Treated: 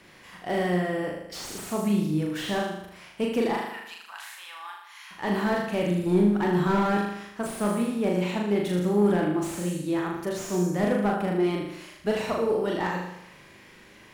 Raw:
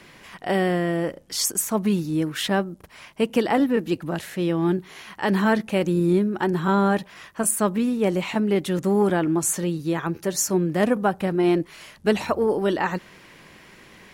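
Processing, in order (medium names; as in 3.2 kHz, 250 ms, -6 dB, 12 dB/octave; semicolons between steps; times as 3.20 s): 3.53–5.11 s: Chebyshev high-pass 930 Hz, order 4; 6.06–6.98 s: waveshaping leveller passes 1; flutter echo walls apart 6.7 m, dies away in 0.79 s; slew-rate limiter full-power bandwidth 150 Hz; trim -6 dB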